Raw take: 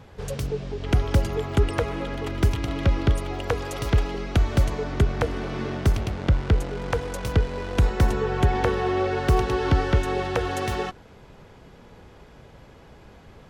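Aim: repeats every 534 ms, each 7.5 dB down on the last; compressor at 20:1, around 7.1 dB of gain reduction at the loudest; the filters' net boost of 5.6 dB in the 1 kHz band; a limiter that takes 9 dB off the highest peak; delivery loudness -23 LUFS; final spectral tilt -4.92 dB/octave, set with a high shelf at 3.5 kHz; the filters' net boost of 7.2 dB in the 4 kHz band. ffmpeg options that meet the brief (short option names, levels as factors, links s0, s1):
-af "equalizer=f=1000:t=o:g=7,highshelf=f=3500:g=4.5,equalizer=f=4000:t=o:g=6,acompressor=threshold=0.1:ratio=20,alimiter=limit=0.141:level=0:latency=1,aecho=1:1:534|1068|1602|2136|2670:0.422|0.177|0.0744|0.0312|0.0131,volume=1.78"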